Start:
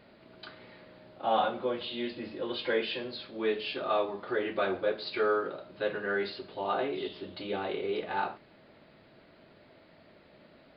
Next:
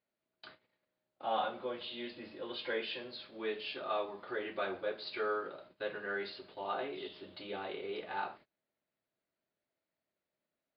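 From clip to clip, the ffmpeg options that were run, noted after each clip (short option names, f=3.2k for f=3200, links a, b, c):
-af "agate=range=-26dB:threshold=-48dB:ratio=16:detection=peak,lowshelf=f=470:g=-6,volume=-5dB"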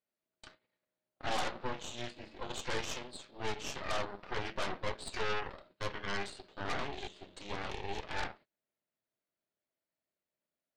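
-af "aeval=exprs='0.075*(cos(1*acos(clip(val(0)/0.075,-1,1)))-cos(1*PI/2))+0.00531*(cos(3*acos(clip(val(0)/0.075,-1,1)))-cos(3*PI/2))+0.0237*(cos(8*acos(clip(val(0)/0.075,-1,1)))-cos(8*PI/2))':c=same,volume=-2.5dB"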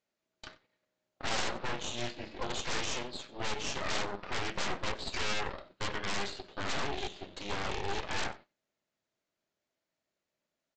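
-af "aresample=16000,aeval=exprs='0.0299*(abs(mod(val(0)/0.0299+3,4)-2)-1)':c=same,aresample=44100,aecho=1:1:93:0.0891,volume=6.5dB"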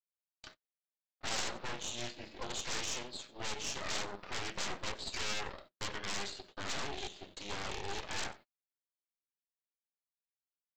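-af "aemphasis=mode=production:type=50kf,aeval=exprs='0.133*(cos(1*acos(clip(val(0)/0.133,-1,1)))-cos(1*PI/2))+0.0335*(cos(2*acos(clip(val(0)/0.133,-1,1)))-cos(2*PI/2))+0.0106*(cos(4*acos(clip(val(0)/0.133,-1,1)))-cos(4*PI/2))':c=same,agate=range=-27dB:threshold=-48dB:ratio=16:detection=peak,volume=-6dB"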